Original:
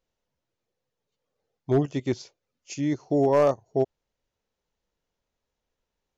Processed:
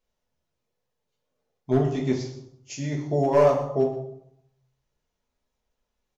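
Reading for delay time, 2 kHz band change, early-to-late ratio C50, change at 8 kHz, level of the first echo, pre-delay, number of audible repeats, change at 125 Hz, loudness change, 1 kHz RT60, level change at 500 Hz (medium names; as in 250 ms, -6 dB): 122 ms, +1.5 dB, 6.5 dB, no reading, -13.5 dB, 5 ms, 1, +3.0 dB, +1.5 dB, 0.75 s, +1.5 dB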